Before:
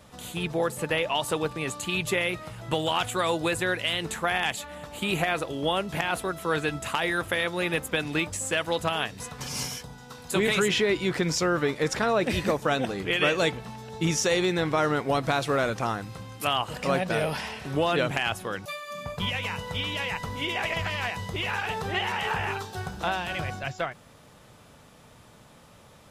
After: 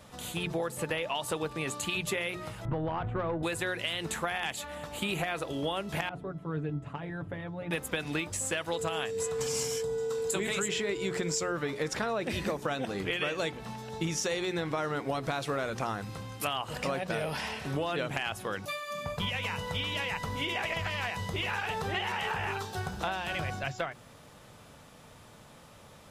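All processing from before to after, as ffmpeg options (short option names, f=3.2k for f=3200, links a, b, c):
-filter_complex "[0:a]asettb=1/sr,asplit=3[a][b][c];[a]atrim=end=2.654[d];[b]atrim=start=2.65:end=3.43,asetpts=PTS-STARTPTS,afade=t=in:d=0.004:c=qsin,afade=t=out:st=0.776:d=0.004:c=qsin,lowpass=1.3k,aemphasis=mode=reproduction:type=bsi,aeval=exprs='(tanh(8.91*val(0)+0.3)-tanh(0.3))/8.91':c=same[e];[c]atrim=start=3.426[f];[d][e]acrossfade=d=0.004:c1=hsin:c2=qsin[g];[g][f]acrossfade=d=0.004:c1=qsin:c2=hsin,asettb=1/sr,asplit=3[h][i][j];[h]atrim=end=6.094[k];[i]atrim=start=6.09:end=7.71,asetpts=PTS-STARTPTS,afade=t=in:d=0.004:c=qsin,afade=t=out:st=1.616:d=0.004:c=qsin,bandpass=f=110:t=q:w=0.63,aecho=1:1:7:0.68,atrim=end_sample=71442[l];[j]atrim=start=7.706[m];[k][l]acrossfade=d=0.004:c1=hsin:c2=qsin[n];[n][m]acrossfade=d=0.004:c1=qsin:c2=hsin,asettb=1/sr,asplit=3[o][p][q];[o]atrim=end=8.734[r];[p]atrim=start=8.73:end=11.52,asetpts=PTS-STARTPTS,afade=t=in:d=0.004:c=qsin,afade=t=out:st=2.786:d=0.004:c=qsin,equalizer=f=7.5k:t=o:w=0.26:g=12,aeval=exprs='val(0)+0.0398*sin(2*PI*450*n/s)':c=same[s];[q]atrim=start=11.516[t];[r][s]acrossfade=d=0.004:c1=hsin:c2=qsin[u];[u][t]acrossfade=d=0.004:c1=qsin:c2=hsin,bandreject=f=60:t=h:w=6,bandreject=f=120:t=h:w=6,bandreject=f=180:t=h:w=6,bandreject=f=240:t=h:w=6,bandreject=f=300:t=h:w=6,bandreject=f=360:t=h:w=6,bandreject=f=420:t=h:w=6,acompressor=threshold=-29dB:ratio=5"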